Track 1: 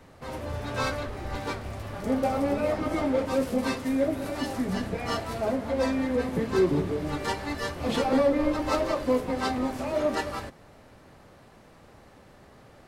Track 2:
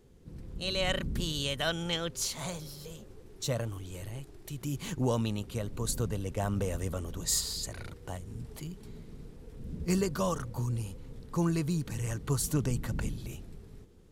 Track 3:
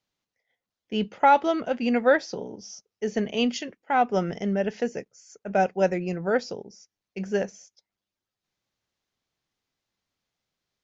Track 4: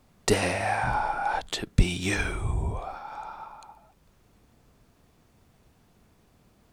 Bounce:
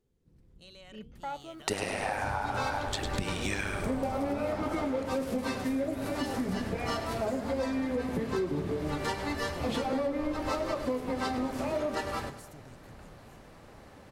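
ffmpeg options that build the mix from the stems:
ffmpeg -i stem1.wav -i stem2.wav -i stem3.wav -i stem4.wav -filter_complex "[0:a]adelay=1800,volume=0.5dB,asplit=2[link_01][link_02];[link_02]volume=-13.5dB[link_03];[1:a]acompressor=threshold=-32dB:ratio=6,volume=-16.5dB[link_04];[2:a]flanger=delay=7.7:depth=2.3:regen=88:speed=1.7:shape=triangular,volume=-16.5dB[link_05];[3:a]lowshelf=frequency=92:gain=-12,tremolo=f=100:d=0.824,adelay=1400,volume=2.5dB,asplit=2[link_06][link_07];[link_07]volume=-8dB[link_08];[link_03][link_08]amix=inputs=2:normalize=0,aecho=0:1:102|204|306|408|510|612:1|0.45|0.202|0.0911|0.041|0.0185[link_09];[link_01][link_04][link_05][link_06][link_09]amix=inputs=5:normalize=0,acompressor=threshold=-28dB:ratio=6" out.wav

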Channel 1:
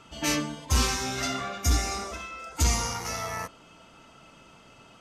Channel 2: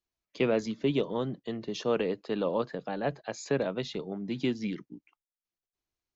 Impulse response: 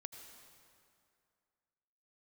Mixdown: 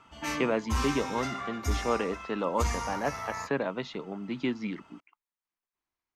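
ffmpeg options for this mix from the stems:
-filter_complex "[0:a]equalizer=frequency=73:width_type=o:width=1:gain=8,volume=-12.5dB[link_01];[1:a]volume=-5.5dB[link_02];[link_01][link_02]amix=inputs=2:normalize=0,equalizer=frequency=250:width_type=o:width=1:gain=5,equalizer=frequency=1000:width_type=o:width=1:gain=11,equalizer=frequency=2000:width_type=o:width=1:gain=7"

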